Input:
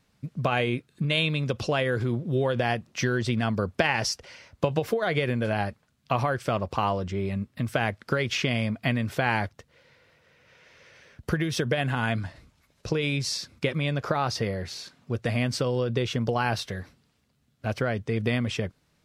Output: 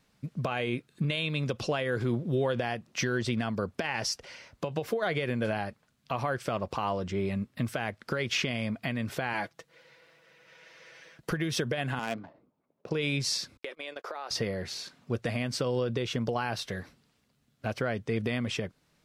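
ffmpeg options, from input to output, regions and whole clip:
-filter_complex "[0:a]asettb=1/sr,asplit=3[a][b][c];[a]atrim=end=9.334[d];[b]atrim=start=9.33:end=11.31,asetpts=PTS-STARTPTS,afade=t=in:d=0.004:c=qsin,afade=t=out:st=1.976:d=0.004:c=qsin,highpass=f=240:p=1,aecho=1:1:6.1:0.63,atrim=end_sample=87318[e];[c]atrim=start=11.306[f];[d][e]acrossfade=d=0.004:c1=hsin:c2=qsin[g];[g][f]acrossfade=d=0.004:c1=qsin:c2=hsin,asettb=1/sr,asplit=3[h][i][j];[h]atrim=end=11.994[k];[i]atrim=start=11.99:end=12.91,asetpts=PTS-STARTPTS,afade=t=in:d=0.004:c=qsin,afade=t=out:st=0.916:d=0.004:c=qsin,highpass=270,equalizer=f=1.7k:t=o:w=0.78:g=-7,adynamicsmooth=sensitivity=5.5:basefreq=750[l];[j]atrim=start=12.906[m];[k][l]acrossfade=d=0.004:c1=hsin:c2=qsin[n];[n][m]acrossfade=d=0.004:c1=qsin:c2=hsin,asettb=1/sr,asplit=3[o][p][q];[o]atrim=end=13.574[r];[p]atrim=start=13.57:end=14.31,asetpts=PTS-STARTPTS,afade=t=in:d=0.004:c=qsin,afade=t=out:st=0.736:d=0.004:c=qsin,highpass=f=370:w=0.5412,highpass=f=370:w=1.3066,agate=range=-44dB:threshold=-38dB:ratio=16:release=100:detection=peak,acompressor=threshold=-36dB:ratio=4:attack=3.2:release=140:knee=1:detection=peak[s];[q]atrim=start=14.306[t];[r][s]acrossfade=d=0.004:c1=hsin:c2=qsin[u];[u][t]acrossfade=d=0.004:c1=qsin:c2=hsin,equalizer=f=76:t=o:w=1.3:g=-6.5,alimiter=limit=-18dB:level=0:latency=1:release=264"

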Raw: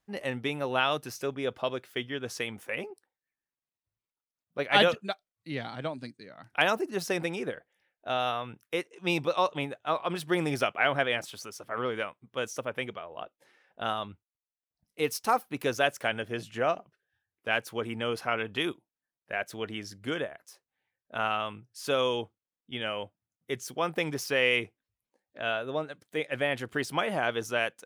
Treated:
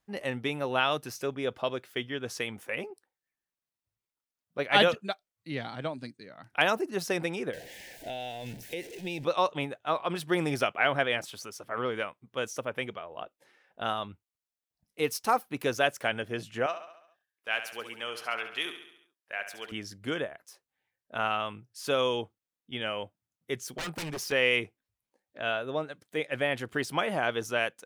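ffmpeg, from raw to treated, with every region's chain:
-filter_complex "[0:a]asettb=1/sr,asplit=3[a][b][c];[a]atrim=end=7.534[d];[b]atrim=start=7.53:end=9.24,asetpts=PTS-STARTPTS,afade=t=in:d=0.004:c=qsin,afade=t=out:st=1.706:d=0.004:c=qsin,aeval=exprs='val(0)+0.5*0.01*sgn(val(0))':c=same,acompressor=threshold=-32dB:ratio=4:attack=3.2:release=140:knee=1:detection=peak,asuperstop=centerf=1200:order=4:qfactor=1.3[e];[c]atrim=start=9.236[f];[d][e]acrossfade=d=0.004:c1=hsin:c2=qsin[g];[g][f]acrossfade=d=0.004:c1=qsin:c2=hsin,asettb=1/sr,asplit=3[h][i][j];[h]atrim=end=16.664[k];[i]atrim=start=16.66:end=19.72,asetpts=PTS-STARTPTS,afade=t=in:d=0.004:c=qsin,afade=t=out:st=3.056:d=0.004:c=qsin,highpass=f=1.3k:p=1,aecho=1:1:69|138|207|276|345|414:0.316|0.174|0.0957|0.0526|0.0289|0.0159,atrim=end_sample=134946[l];[j]atrim=start=19.716[m];[k][l]acrossfade=d=0.004:c1=hsin:c2=qsin[n];[n][m]acrossfade=d=0.004:c1=qsin:c2=hsin,asettb=1/sr,asplit=3[o][p][q];[o]atrim=end=23.734[r];[p]atrim=start=23.73:end=24.32,asetpts=PTS-STARTPTS,afade=t=in:d=0.004:c=qsin,afade=t=out:st=0.586:d=0.004:c=qsin,aecho=1:1:4.9:0.34,atrim=end_sample=26019,aeval=exprs='0.0316*(abs(mod(val(0)/0.0316+3,4)-2)-1)':c=same[s];[q]atrim=start=24.316[t];[r][s]acrossfade=d=0.004:c1=hsin:c2=qsin[u];[u][t]acrossfade=d=0.004:c1=qsin:c2=hsin"

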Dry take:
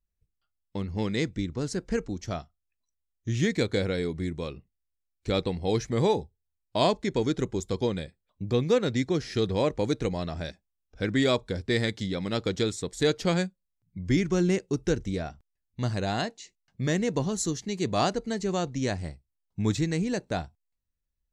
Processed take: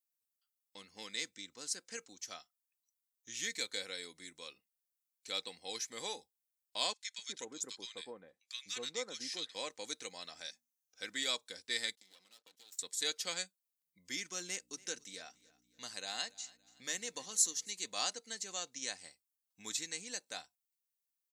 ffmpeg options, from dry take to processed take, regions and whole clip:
-filter_complex "[0:a]asettb=1/sr,asplit=3[a][b][c];[a]atrim=end=6.934[d];[b]atrim=start=6.93:end=9.55,asetpts=PTS-STARTPTS,afade=t=in:d=0.004:c=qsin,afade=t=out:st=2.616:d=0.004:c=qsin,lowpass=9.7k,acrossover=split=1400[e][f];[e]adelay=250[g];[g][f]amix=inputs=2:normalize=0,atrim=end_sample=115542[h];[c]atrim=start=9.546[i];[d][h]acrossfade=d=0.004:c1=hsin:c2=qsin[j];[j][i]acrossfade=d=0.004:c1=qsin:c2=hsin,asettb=1/sr,asplit=3[k][l][m];[k]atrim=end=10.394[n];[l]atrim=start=10.39:end=11.04,asetpts=PTS-STARTPTS,afade=t=in:d=0.004:c=qsin,afade=t=out:st=0.646:d=0.004:c=qsin,equalizer=f=6.2k:w=5.5:g=8.5,bandreject=f=60:t=h:w=6,bandreject=f=120:t=h:w=6,bandreject=f=180:t=h:w=6,bandreject=f=240:t=h:w=6[o];[m]atrim=start=11.036[p];[n][o]acrossfade=d=0.004:c1=hsin:c2=qsin[q];[q][p]acrossfade=d=0.004:c1=qsin:c2=hsin,asettb=1/sr,asplit=3[r][s][t];[r]atrim=end=11.954[u];[s]atrim=start=11.95:end=12.79,asetpts=PTS-STARTPTS,afade=t=in:d=0.004:c=qsin,afade=t=out:st=0.836:d=0.004:c=qsin,agate=range=-24dB:threshold=-36dB:ratio=16:release=100:detection=peak,acompressor=threshold=-39dB:ratio=20:attack=3.2:release=140:knee=1:detection=peak,aeval=exprs='max(val(0),0)':c=same[v];[t]atrim=start=12.786[w];[u][v]acrossfade=d=0.004:c1=hsin:c2=qsin[x];[x][w]acrossfade=d=0.004:c1=qsin:c2=hsin,asettb=1/sr,asplit=3[y][z][aa];[y]atrim=end=14.474[ab];[z]atrim=start=14.47:end=17.71,asetpts=PTS-STARTPTS,afade=t=in:d=0.004:c=qsin,afade=t=out:st=3.236:d=0.004:c=qsin,bandreject=f=50:t=h:w=6,bandreject=f=100:t=h:w=6,bandreject=f=150:t=h:w=6,aecho=1:1:284|568|852:0.075|0.03|0.012,atrim=end_sample=142884,aeval=exprs='val(0)+0.00794*(sin(2*PI*60*n/s)+sin(2*PI*2*60*n/s)/2+sin(2*PI*3*60*n/s)/3+sin(2*PI*4*60*n/s)/4+sin(2*PI*5*60*n/s)/5)':c=same[ac];[aa]atrim=start=17.706[ad];[ab][ac]acrossfade=d=0.004:c1=hsin:c2=qsin[ae];[ae][ad]acrossfade=d=0.004:c1=qsin:c2=hsin,highpass=f=170:p=1,aderivative,aecho=1:1:3.9:0.34,volume=2.5dB"

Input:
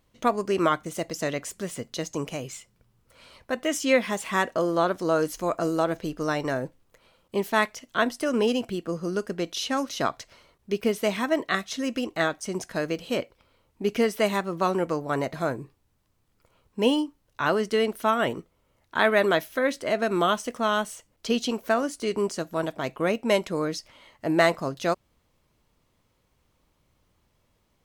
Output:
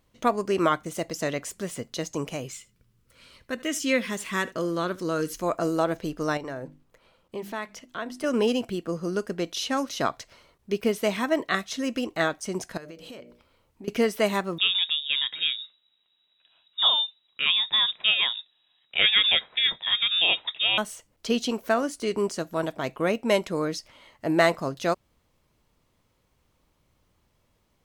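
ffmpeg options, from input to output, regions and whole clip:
-filter_complex "[0:a]asettb=1/sr,asplit=3[a][b][c];[a]atrim=end=2.524[d];[b]atrim=start=2.52:end=5.4,asetpts=PTS-STARTPTS,afade=t=in:d=0.004:c=qsin,afade=t=out:st=2.876:d=0.004:c=qsin,equalizer=f=760:t=o:w=0.96:g=-11,aecho=1:1:76:0.0944,atrim=end_sample=127008[e];[c]atrim=start=5.396[f];[d][e]acrossfade=d=0.004:c1=hsin:c2=qsin[g];[g][f]acrossfade=d=0.004:c1=qsin:c2=hsin,asettb=1/sr,asplit=3[h][i][j];[h]atrim=end=6.374[k];[i]atrim=start=6.37:end=8.24,asetpts=PTS-STARTPTS,afade=t=in:d=0.004:c=qsin,afade=t=out:st=1.866:d=0.004:c=qsin,highshelf=f=4.9k:g=-6,bandreject=f=50:t=h:w=6,bandreject=f=100:t=h:w=6,bandreject=f=150:t=h:w=6,bandreject=f=200:t=h:w=6,bandreject=f=250:t=h:w=6,bandreject=f=300:t=h:w=6,bandreject=f=350:t=h:w=6,acompressor=threshold=-36dB:ratio=2:attack=3.2:release=140:knee=1:detection=peak[l];[j]atrim=start=8.236[m];[k][l]acrossfade=d=0.004:c1=hsin:c2=qsin[n];[n][m]acrossfade=d=0.004:c1=qsin:c2=hsin,asettb=1/sr,asplit=3[o][p][q];[o]atrim=end=12.774[r];[p]atrim=start=12.77:end=13.88,asetpts=PTS-STARTPTS,afade=t=in:d=0.004:c=qsin,afade=t=out:st=1.106:d=0.004:c=qsin,bandreject=f=60:t=h:w=6,bandreject=f=120:t=h:w=6,bandreject=f=180:t=h:w=6,bandreject=f=240:t=h:w=6,bandreject=f=300:t=h:w=6,bandreject=f=360:t=h:w=6,bandreject=f=420:t=h:w=6,bandreject=f=480:t=h:w=6,bandreject=f=540:t=h:w=6,bandreject=f=600:t=h:w=6,acompressor=threshold=-39dB:ratio=8:attack=3.2:release=140:knee=1:detection=peak[s];[q]atrim=start=13.876[t];[r][s]acrossfade=d=0.004:c1=hsin:c2=qsin[u];[u][t]acrossfade=d=0.004:c1=qsin:c2=hsin,asettb=1/sr,asplit=3[v][w][x];[v]atrim=end=14.584[y];[w]atrim=start=14.58:end=20.78,asetpts=PTS-STARTPTS,afade=t=in:d=0.004:c=qsin,afade=t=out:st=6.196:d=0.004:c=qsin,lowpass=f=3.3k:t=q:w=0.5098,lowpass=f=3.3k:t=q:w=0.6013,lowpass=f=3.3k:t=q:w=0.9,lowpass=f=3.3k:t=q:w=2.563,afreqshift=-3900,equalizer=f=220:w=0.57:g=9[z];[x]atrim=start=20.776[aa];[y][z]acrossfade=d=0.004:c1=hsin:c2=qsin[ab];[ab][aa]acrossfade=d=0.004:c1=qsin:c2=hsin"

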